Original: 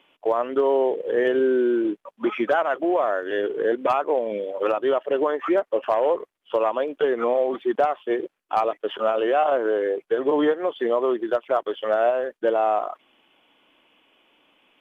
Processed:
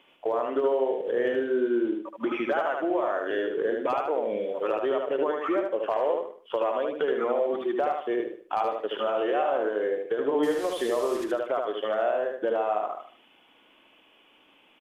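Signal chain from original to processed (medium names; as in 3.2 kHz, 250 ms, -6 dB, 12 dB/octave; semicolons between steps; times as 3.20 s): 10.43–11.24 s: one-bit delta coder 64 kbps, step -30.5 dBFS; compression 2:1, threshold -29 dBFS, peak gain reduction 7.5 dB; on a send: feedback delay 75 ms, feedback 33%, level -3.5 dB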